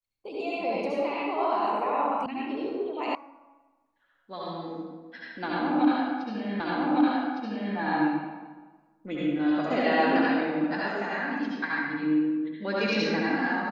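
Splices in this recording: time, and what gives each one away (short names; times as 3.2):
2.26 sound cut off
3.15 sound cut off
6.6 repeat of the last 1.16 s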